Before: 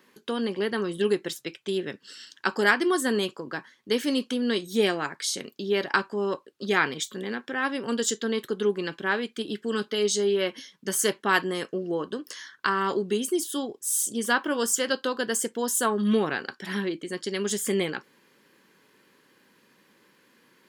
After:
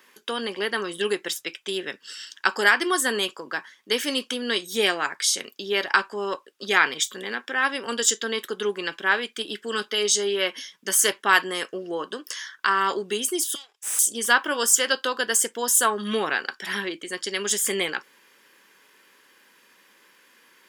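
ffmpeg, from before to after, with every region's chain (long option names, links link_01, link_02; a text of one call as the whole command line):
ffmpeg -i in.wav -filter_complex "[0:a]asettb=1/sr,asplit=3[link_01][link_02][link_03];[link_01]atrim=end=13.554[link_04];[link_02]atrim=start=13.55:end=13.99,asetpts=PTS-STARTPTS,afade=type=in:duration=0.004:curve=qsin,afade=type=out:start_time=0.436:duration=0.004:curve=qsin,aeval=exprs='if(lt(val(0),0),0.447*val(0),val(0))':channel_layout=same,asuperpass=centerf=5500:order=4:qfactor=0.5,aeval=exprs='(tanh(31.6*val(0)+0.7)-tanh(0.7))/31.6':channel_layout=same[link_05];[link_03]atrim=start=13.986[link_06];[link_04][link_05]acrossfade=duration=0.004:curve1=hsin:curve2=qsin[link_07];[link_07][link_06]acrossfade=duration=0.004:curve1=qsin:curve2=hsin,highpass=frequency=1100:poles=1,bandreject=frequency=4200:width=9.1,alimiter=level_in=11.5dB:limit=-1dB:release=50:level=0:latency=1,volume=-4dB" out.wav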